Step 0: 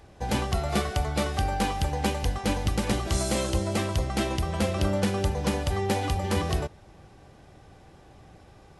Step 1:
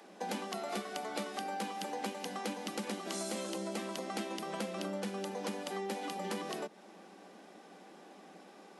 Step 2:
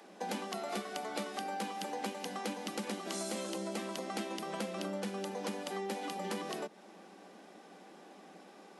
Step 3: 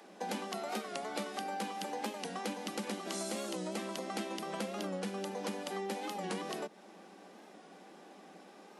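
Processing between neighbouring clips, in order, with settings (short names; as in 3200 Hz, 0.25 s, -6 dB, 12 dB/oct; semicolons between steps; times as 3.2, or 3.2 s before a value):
steep high-pass 180 Hz 96 dB/oct; compressor 6:1, threshold -36 dBFS, peak gain reduction 14 dB
nothing audible
record warp 45 rpm, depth 100 cents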